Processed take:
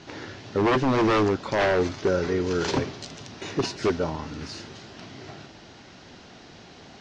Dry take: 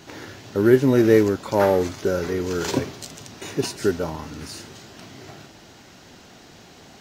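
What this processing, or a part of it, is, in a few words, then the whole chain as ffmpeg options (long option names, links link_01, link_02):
synthesiser wavefolder: -af "aeval=exprs='0.168*(abs(mod(val(0)/0.168+3,4)-2)-1)':channel_layout=same,lowpass=frequency=5800:width=0.5412,lowpass=frequency=5800:width=1.3066"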